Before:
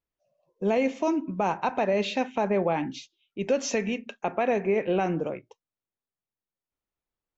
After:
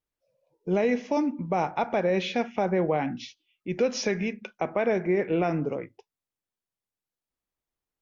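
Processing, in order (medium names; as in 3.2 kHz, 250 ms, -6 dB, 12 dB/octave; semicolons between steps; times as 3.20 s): tape speed -8%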